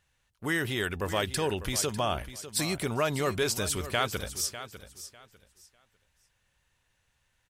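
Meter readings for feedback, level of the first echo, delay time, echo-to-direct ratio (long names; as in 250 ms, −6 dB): 22%, −13.0 dB, 599 ms, −13.0 dB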